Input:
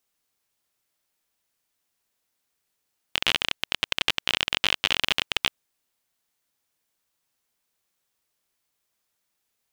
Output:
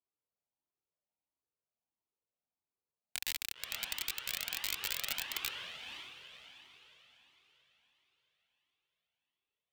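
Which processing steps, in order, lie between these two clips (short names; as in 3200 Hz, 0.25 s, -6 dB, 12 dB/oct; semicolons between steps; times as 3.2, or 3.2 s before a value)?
Wiener smoothing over 25 samples; HPF 120 Hz 6 dB/oct; high shelf 12000 Hz -3 dB; on a send: diffused feedback echo 0.521 s, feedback 41%, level -11 dB; on the sum: dynamic EQ 1300 Hz, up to +5 dB, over -40 dBFS, Q 1.2; wrapped overs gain 9 dB; cascading flanger rising 1.5 Hz; gain -5 dB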